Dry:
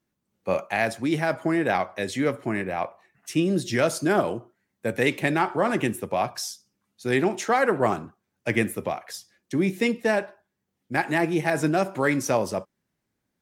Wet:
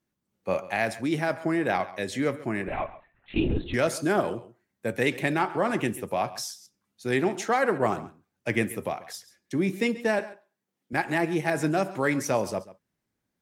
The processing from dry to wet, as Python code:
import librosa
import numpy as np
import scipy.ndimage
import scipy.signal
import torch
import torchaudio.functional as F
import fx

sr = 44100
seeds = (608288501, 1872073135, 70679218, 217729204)

p1 = fx.lpc_vocoder(x, sr, seeds[0], excitation='whisper', order=10, at=(2.68, 3.74))
p2 = fx.highpass(p1, sr, hz=190.0, slope=12, at=(10.19, 10.93))
p3 = p2 + fx.echo_single(p2, sr, ms=136, db=-17.5, dry=0)
p4 = fx.buffer_glitch(p3, sr, at_s=(6.61,), block=256, repeats=8)
y = F.gain(torch.from_numpy(p4), -2.5).numpy()